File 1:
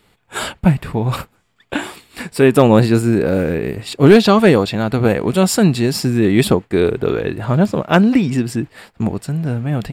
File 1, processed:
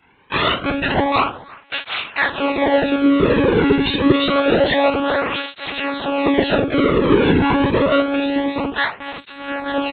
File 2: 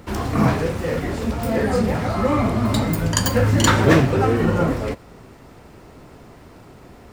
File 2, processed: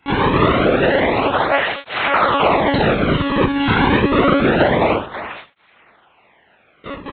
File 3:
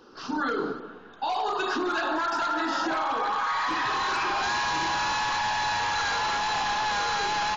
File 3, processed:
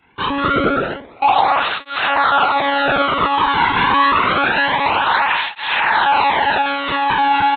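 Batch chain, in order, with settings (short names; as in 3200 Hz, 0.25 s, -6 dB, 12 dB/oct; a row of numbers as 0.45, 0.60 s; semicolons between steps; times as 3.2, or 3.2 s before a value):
gate with hold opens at -32 dBFS; bell 190 Hz -10.5 dB 1.4 oct; in parallel at +3 dB: compressor 5:1, threshold -30 dBFS; on the sum: fuzz box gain 33 dB, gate -39 dBFS; companded quantiser 6-bit; band noise 200–2700 Hz -54 dBFS; feedback echo 0.328 s, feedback 41%, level -23 dB; shoebox room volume 170 m³, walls furnished, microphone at 3.4 m; monotone LPC vocoder at 8 kHz 280 Hz; tape flanging out of phase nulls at 0.27 Hz, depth 1.7 ms; gain -4.5 dB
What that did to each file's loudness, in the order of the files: -2.0, +4.0, +11.0 LU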